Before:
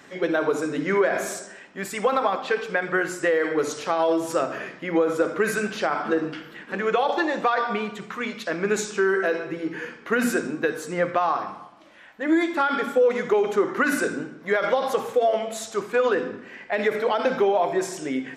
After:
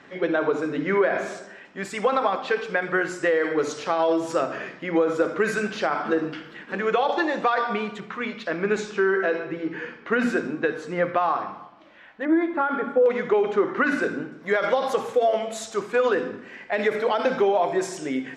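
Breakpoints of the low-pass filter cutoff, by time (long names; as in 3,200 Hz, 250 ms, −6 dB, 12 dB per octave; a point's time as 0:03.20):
3,700 Hz
from 0:01.65 6,600 Hz
from 0:08.00 3,900 Hz
from 0:12.25 1,500 Hz
from 0:13.06 3,600 Hz
from 0:14.32 9,400 Hz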